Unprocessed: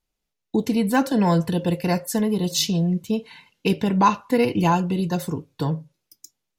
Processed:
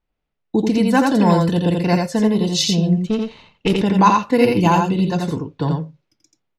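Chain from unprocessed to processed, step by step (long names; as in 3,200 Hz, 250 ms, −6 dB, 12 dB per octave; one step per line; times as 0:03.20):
0:03.07–0:03.74: lower of the sound and its delayed copy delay 0.3 ms
low-pass that shuts in the quiet parts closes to 2,300 Hz, open at −14 dBFS
single-tap delay 85 ms −3.5 dB
level +3.5 dB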